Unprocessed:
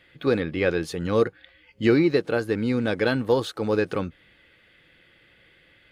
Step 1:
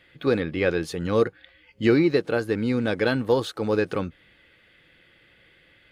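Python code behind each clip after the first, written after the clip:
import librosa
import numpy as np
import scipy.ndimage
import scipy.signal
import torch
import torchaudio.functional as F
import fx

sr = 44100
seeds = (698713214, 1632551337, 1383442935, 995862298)

y = x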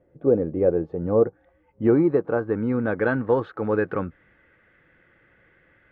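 y = fx.filter_sweep_lowpass(x, sr, from_hz=590.0, to_hz=1600.0, start_s=0.51, end_s=3.29, q=1.7)
y = fx.high_shelf(y, sr, hz=2600.0, db=-10.0)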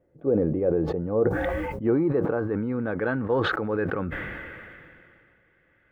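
y = fx.sustainer(x, sr, db_per_s=25.0)
y = F.gain(torch.from_numpy(y), -5.0).numpy()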